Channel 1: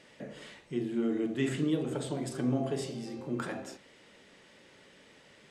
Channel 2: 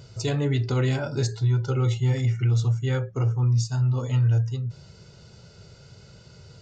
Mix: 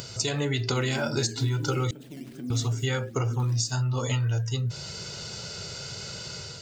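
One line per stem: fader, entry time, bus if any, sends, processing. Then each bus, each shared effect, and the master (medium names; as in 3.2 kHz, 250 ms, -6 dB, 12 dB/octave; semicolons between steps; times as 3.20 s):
-10.5 dB, 0.00 s, no send, decimation with a swept rate 10×, swing 160% 2.4 Hz; graphic EQ 250/500/1000 Hz +7/-6/-11 dB
+2.5 dB, 0.00 s, muted 1.91–2.50 s, no send, level rider gain up to 9 dB; tilt EQ +2.5 dB/octave; compression 10:1, threshold -26 dBFS, peak gain reduction 13.5 dB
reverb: none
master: upward compressor, threshold -33 dBFS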